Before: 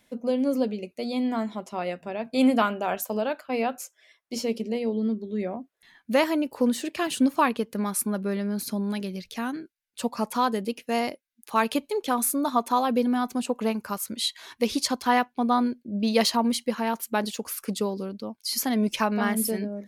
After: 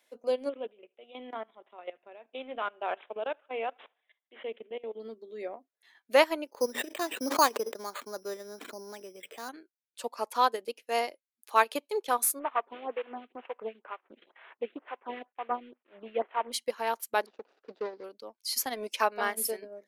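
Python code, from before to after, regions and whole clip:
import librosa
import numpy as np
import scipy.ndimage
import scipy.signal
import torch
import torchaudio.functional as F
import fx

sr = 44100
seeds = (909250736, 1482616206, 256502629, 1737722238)

y = fx.chain(x, sr, fx.level_steps(step_db=14),
    fx.echo_thinned(ms=76, feedback_pct=48, hz=310.0, wet_db=-24),
    fx.resample_bad(factor=6, down='none', up='filtered'), at=(0.49, 5.0))
y = fx.chain(y, sr, fx.high_shelf(hz=2600.0, db=-11.0),
    fx.resample_bad(factor=8, down='filtered', up='hold'),
    fx.sustainer(db_per_s=51.0), at=(6.47, 9.49))
y = fx.chain(y, sr, fx.cvsd(bps=16000),
    fx.stagger_phaser(hz=2.1), at=(12.39, 16.52))
y = fx.chain(y, sr, fx.median_filter(points=41),
    fx.lowpass(hz=5000.0, slope=24), at=(17.26, 18.04))
y = scipy.signal.sosfilt(scipy.signal.butter(4, 370.0, 'highpass', fs=sr, output='sos'), y)
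y = fx.transient(y, sr, attack_db=-2, sustain_db=-7)
y = fx.upward_expand(y, sr, threshold_db=-35.0, expansion=1.5)
y = y * 10.0 ** (2.5 / 20.0)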